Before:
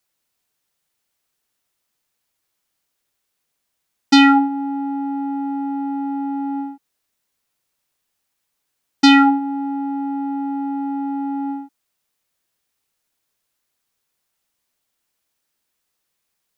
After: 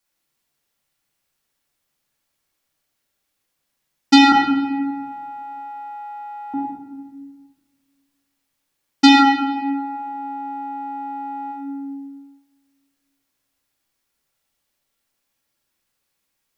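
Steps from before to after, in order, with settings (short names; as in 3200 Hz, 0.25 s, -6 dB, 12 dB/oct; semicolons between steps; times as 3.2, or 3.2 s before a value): 4.32–6.54 HPF 840 Hz 24 dB/oct; shoebox room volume 950 m³, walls mixed, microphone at 2.3 m; gain -3.5 dB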